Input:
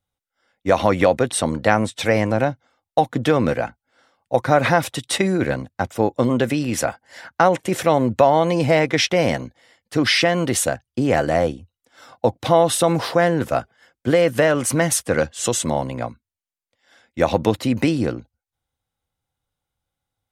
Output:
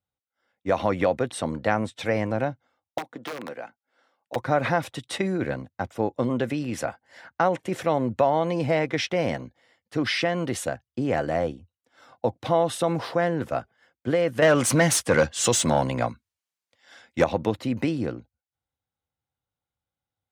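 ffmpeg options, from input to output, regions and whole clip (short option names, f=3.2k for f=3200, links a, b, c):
-filter_complex "[0:a]asettb=1/sr,asplit=3[a][b][c];[a]atrim=end=2.984[d];[b]atrim=start=2.98:end=4.36,asetpts=PTS-STARTPTS,afade=t=in:d=0.004:c=qsin,afade=t=out:st=1.376:d=0.004:c=qsin,aeval=exprs='(mod(2.82*val(0)+1,2)-1)/2.82':c=same,highpass=260,acrossover=split=860|2400[e][f][g];[e]acompressor=threshold=-29dB:ratio=4[h];[f]acompressor=threshold=-33dB:ratio=4[i];[g]acompressor=threshold=-34dB:ratio=4[j];[h][i][j]amix=inputs=3:normalize=0[k];[c]atrim=start=4.356[l];[d][k]acrossfade=d=0.004:c1=hsin:c2=qsin[m];[m][l]acrossfade=d=0.004:c1=qsin:c2=hsin,asettb=1/sr,asplit=3[n][o][p];[n]atrim=end=14.424[q];[o]atrim=start=14.42:end=17.24,asetpts=PTS-STARTPTS,afade=t=in:d=0.004:c=qsin,afade=t=out:st=2.816:d=0.004:c=qsin,bass=f=250:g=6,treble=f=4k:g=7,acontrast=81,asplit=2[r][s];[s]highpass=f=720:p=1,volume=8dB,asoftclip=type=tanh:threshold=0dB[t];[r][t]amix=inputs=2:normalize=0,lowpass=f=6.9k:p=1,volume=-6dB[u];[p]atrim=start=17.236[v];[q][u]acrossfade=d=0.004:c1=hsin:c2=qsin[w];[w][v]acrossfade=d=0.004:c1=qsin:c2=hsin,highpass=62,highshelf=f=5.2k:g=-9,volume=-6.5dB"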